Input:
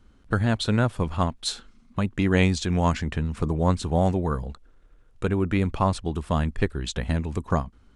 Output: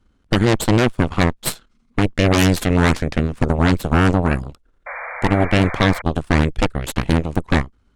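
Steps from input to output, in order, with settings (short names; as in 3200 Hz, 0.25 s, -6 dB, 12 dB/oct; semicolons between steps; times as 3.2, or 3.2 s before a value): added harmonics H 3 -22 dB, 5 -42 dB, 7 -29 dB, 8 -6 dB, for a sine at -6 dBFS; painted sound noise, 4.86–6.02, 480–2400 Hz -31 dBFS; gain +1 dB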